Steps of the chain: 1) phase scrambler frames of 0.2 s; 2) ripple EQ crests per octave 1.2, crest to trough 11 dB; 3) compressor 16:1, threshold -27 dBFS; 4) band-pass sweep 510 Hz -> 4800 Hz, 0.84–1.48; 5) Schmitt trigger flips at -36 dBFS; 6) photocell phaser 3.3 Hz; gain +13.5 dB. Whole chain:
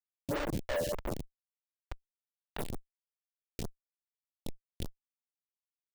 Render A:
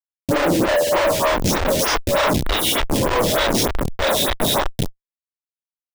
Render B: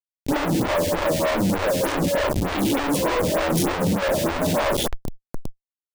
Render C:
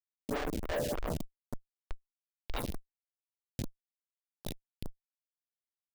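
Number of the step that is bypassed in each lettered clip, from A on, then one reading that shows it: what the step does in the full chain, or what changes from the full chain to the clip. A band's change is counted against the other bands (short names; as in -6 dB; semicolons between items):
3, mean gain reduction 11.5 dB; 4, crest factor change -8.0 dB; 2, crest factor change -2.0 dB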